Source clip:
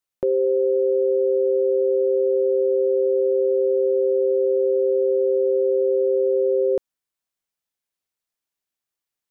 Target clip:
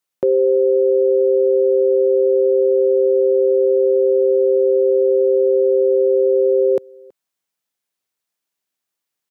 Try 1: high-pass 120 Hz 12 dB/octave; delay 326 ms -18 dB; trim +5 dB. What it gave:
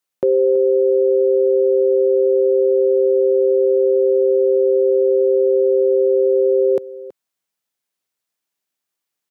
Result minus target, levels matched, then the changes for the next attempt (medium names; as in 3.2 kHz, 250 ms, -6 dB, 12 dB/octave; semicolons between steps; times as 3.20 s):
echo-to-direct +9 dB
change: delay 326 ms -27 dB